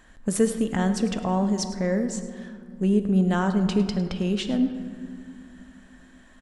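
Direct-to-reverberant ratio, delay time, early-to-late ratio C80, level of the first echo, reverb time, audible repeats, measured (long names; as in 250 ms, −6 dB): 7.5 dB, 104 ms, 10.0 dB, −15.0 dB, 2.4 s, 1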